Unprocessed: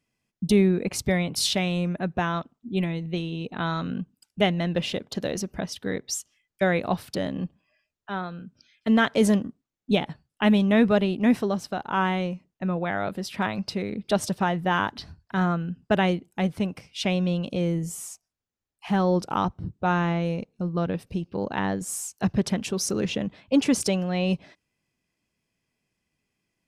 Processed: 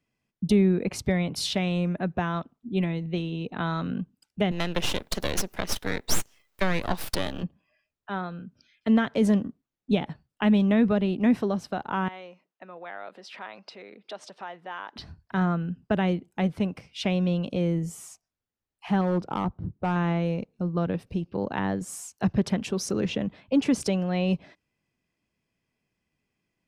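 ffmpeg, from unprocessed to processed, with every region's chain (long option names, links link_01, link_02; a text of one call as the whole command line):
ffmpeg -i in.wav -filter_complex "[0:a]asettb=1/sr,asplit=3[link_01][link_02][link_03];[link_01]atrim=end=4.514[link_04];[link_02]atrim=start=4.51:end=7.43,asetpts=PTS-STARTPTS,afade=type=in:duration=0.004:curve=qsin,afade=type=out:start_time=2.916:duration=0.004:curve=qsin,acontrast=70,aemphasis=mode=production:type=riaa,aeval=exprs='max(val(0),0)':channel_layout=same[link_05];[link_03]atrim=start=7.426[link_06];[link_04][link_05]acrossfade=duration=0.004:curve1=hsin:curve2=qsin[link_07];[link_07][link_06]acrossfade=duration=0.004:curve1=qsin:curve2=hsin,asettb=1/sr,asplit=3[link_08][link_09][link_10];[link_08]atrim=end=12.084[link_11];[link_09]atrim=start=12.08:end=14.96,asetpts=PTS-STARTPTS,afade=type=in:duration=0.004:curve=qsin,afade=type=out:start_time=2.876:duration=0.004:curve=qsin,acompressor=threshold=-36dB:ratio=2.5:attack=3.2:release=140:knee=1:detection=peak,highpass=530,lowpass=6100[link_12];[link_10]atrim=start=14.956[link_13];[link_11][link_12]acrossfade=duration=0.004:curve1=hsin:curve2=qsin[link_14];[link_14][link_13]acrossfade=duration=0.004:curve1=qsin:curve2=hsin,asettb=1/sr,asplit=3[link_15][link_16][link_17];[link_15]atrim=end=19.014[link_18];[link_16]atrim=start=19.01:end=19.96,asetpts=PTS-STARTPTS,afade=type=in:duration=0.004:curve=qsin,afade=type=out:start_time=0.946:duration=0.004:curve=qsin,lowpass=frequency=1700:poles=1,asoftclip=type=hard:threshold=-20dB[link_19];[link_17]atrim=start=19.956[link_20];[link_18][link_19]acrossfade=duration=0.004:curve1=hsin:curve2=qsin[link_21];[link_21][link_20]acrossfade=duration=0.004:curve1=qsin:curve2=hsin,highshelf=frequency=5100:gain=-9,acrossover=split=290[link_22][link_23];[link_23]acompressor=threshold=-25dB:ratio=4[link_24];[link_22][link_24]amix=inputs=2:normalize=0" out.wav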